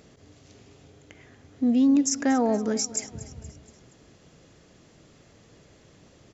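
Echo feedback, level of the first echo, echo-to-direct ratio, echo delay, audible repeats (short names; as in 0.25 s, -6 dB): 51%, -17.0 dB, -15.5 dB, 0.236 s, 4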